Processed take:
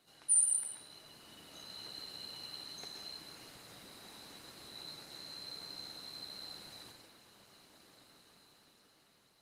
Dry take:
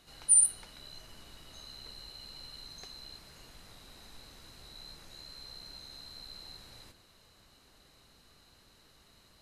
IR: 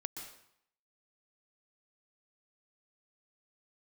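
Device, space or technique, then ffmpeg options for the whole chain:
far-field microphone of a smart speaker: -filter_complex "[0:a]asettb=1/sr,asplit=3[link_01][link_02][link_03];[link_01]atrim=end=2.424[link_04];[link_02]atrim=start=2.42:end=3.02,asetpts=PTS-STARTPTS,afade=type=in:duration=0.004:curve=qsin,afade=type=out:start_time=0.596:duration=0.004:curve=qsin,bandreject=frequency=93.26:width_type=h:width=4,bandreject=frequency=186.52:width_type=h:width=4,bandreject=frequency=279.78:width_type=h:width=4,bandreject=frequency=373.04:width_type=h:width=4,bandreject=frequency=466.3:width_type=h:width=4,bandreject=frequency=559.56:width_type=h:width=4,bandreject=frequency=652.82:width_type=h:width=4,bandreject=frequency=746.08:width_type=h:width=4[link_05];[link_03]atrim=start=3.016[link_06];[link_04][link_05]acrossfade=duration=0.004:curve1=hsin:curve2=qsin[link_07];[link_07][link_06]acrossfade=duration=0.004:curve1=qsin:curve2=hsin[link_08];[1:a]atrim=start_sample=2205[link_09];[link_08][link_09]afir=irnorm=-1:irlink=0,highpass=160,dynaudnorm=framelen=300:gausssize=9:maxgain=8dB,volume=-3dB" -ar 48000 -c:a libopus -b:a 24k

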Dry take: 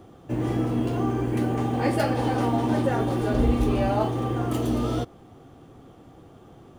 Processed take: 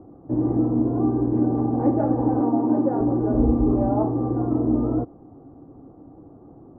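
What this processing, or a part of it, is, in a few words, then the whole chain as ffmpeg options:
under water: -filter_complex "[0:a]asettb=1/sr,asplit=3[link_01][link_02][link_03];[link_01]atrim=end=2.404[link_04];[link_02]atrim=start=2.4:end=3.01,asetpts=PTS-STARTPTS,afade=type=in:duration=0.004:curve=qsin,afade=type=out:start_time=0.606:duration=0.004:curve=qsin,highpass=180[link_05];[link_03]atrim=start=3.006[link_06];[link_04][link_05]acrossfade=duration=0.004:curve1=hsin:curve2=qsin[link_07];[link_07][link_06]acrossfade=duration=0.004:curve1=qsin:curve2=hsin,lowpass=frequency=1000:width=0.5412,lowpass=frequency=1000:width=1.3066,equalizer=frequency=290:width_type=o:width=0.39:gain=9"

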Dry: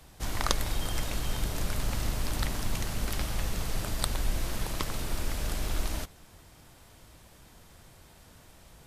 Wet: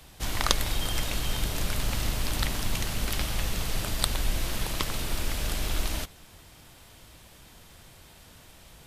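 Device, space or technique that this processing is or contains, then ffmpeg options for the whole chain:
presence and air boost: -af "equalizer=frequency=3100:width_type=o:width=1.3:gain=5,highshelf=frequency=10000:gain=4.5,volume=1.5dB"

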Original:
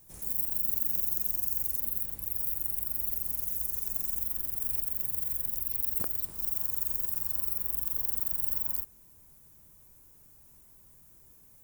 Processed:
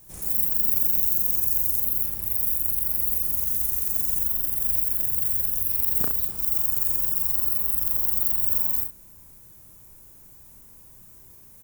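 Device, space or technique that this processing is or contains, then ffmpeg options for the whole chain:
slapback doubling: -filter_complex "[0:a]asplit=3[link_01][link_02][link_03];[link_02]adelay=35,volume=-4dB[link_04];[link_03]adelay=66,volume=-7dB[link_05];[link_01][link_04][link_05]amix=inputs=3:normalize=0,volume=6dB"

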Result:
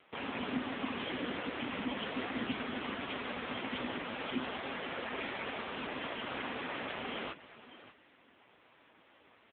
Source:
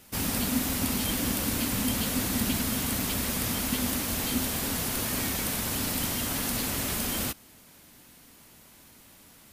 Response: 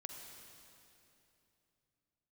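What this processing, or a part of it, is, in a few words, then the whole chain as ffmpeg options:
satellite phone: -af "highpass=380,lowpass=3100,aecho=1:1:590:0.168,volume=2dB" -ar 8000 -c:a libopencore_amrnb -b:a 5900

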